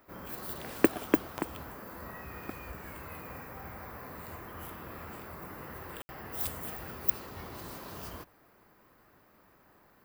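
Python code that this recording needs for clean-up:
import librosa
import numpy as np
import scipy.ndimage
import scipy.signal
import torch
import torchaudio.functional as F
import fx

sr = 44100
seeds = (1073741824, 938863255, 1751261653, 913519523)

y = fx.fix_declick_ar(x, sr, threshold=10.0)
y = fx.fix_ambience(y, sr, seeds[0], print_start_s=9.19, print_end_s=9.69, start_s=6.02, end_s=6.09)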